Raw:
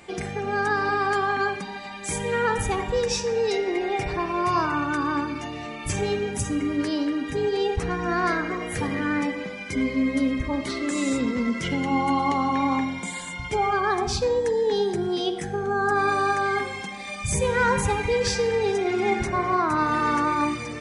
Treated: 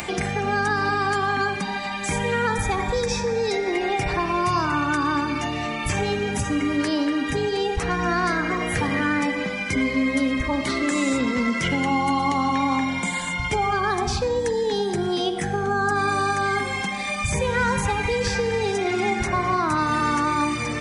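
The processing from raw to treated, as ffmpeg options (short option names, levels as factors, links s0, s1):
-filter_complex "[0:a]asettb=1/sr,asplit=3[s0][s1][s2];[s0]atrim=end=2.474[s3];[s1]atrim=start=2.47:end=3.73,asetpts=PTS-STARTPTS,afade=t=in:d=0.004:c=qsin,afade=t=out:st=1.256:d=0.004:c=qsin,asuperstop=centerf=2900:order=4:qfactor=7.6[s4];[s2]atrim=start=3.726[s5];[s3][s4]acrossfade=d=0.004:c1=hsin:c2=qsin[s6];[s6][s5]acrossfade=d=0.004:c1=qsin:c2=hsin,acrossover=split=350|2700|6500[s7][s8][s9][s10];[s7]acompressor=threshold=0.0224:ratio=4[s11];[s8]acompressor=threshold=0.0316:ratio=4[s12];[s9]acompressor=threshold=0.00562:ratio=4[s13];[s10]acompressor=threshold=0.00398:ratio=4[s14];[s11][s12][s13][s14]amix=inputs=4:normalize=0,equalizer=f=410:w=1.6:g=-5,acompressor=mode=upward:threshold=0.02:ratio=2.5,volume=2.66"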